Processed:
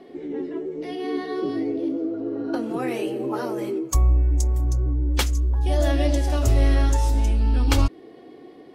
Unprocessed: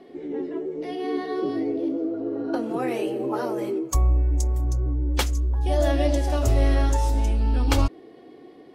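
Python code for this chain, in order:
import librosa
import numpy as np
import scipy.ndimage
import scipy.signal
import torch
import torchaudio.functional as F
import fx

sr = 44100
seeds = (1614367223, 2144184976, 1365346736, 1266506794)

y = fx.dynamic_eq(x, sr, hz=660.0, q=0.83, threshold_db=-38.0, ratio=4.0, max_db=-4)
y = F.gain(torch.from_numpy(y), 2.0).numpy()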